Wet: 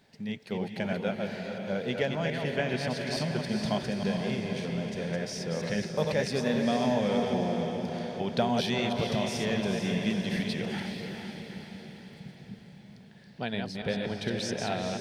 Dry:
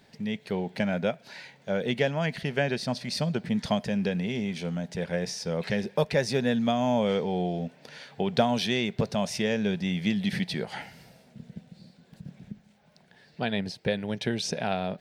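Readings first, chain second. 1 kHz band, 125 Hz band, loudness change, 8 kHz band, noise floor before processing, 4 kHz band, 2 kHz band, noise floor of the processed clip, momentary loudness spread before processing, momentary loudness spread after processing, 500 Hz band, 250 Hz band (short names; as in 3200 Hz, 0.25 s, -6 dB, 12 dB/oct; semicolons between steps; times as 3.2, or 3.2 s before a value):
-1.5 dB, -1.5 dB, -2.0 dB, -1.5 dB, -60 dBFS, -1.5 dB, -1.5 dB, -51 dBFS, 19 LU, 13 LU, -1.5 dB, -1.5 dB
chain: reverse delay 0.144 s, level -4 dB; diffused feedback echo 0.455 s, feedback 55%, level -5.5 dB; gain -4.5 dB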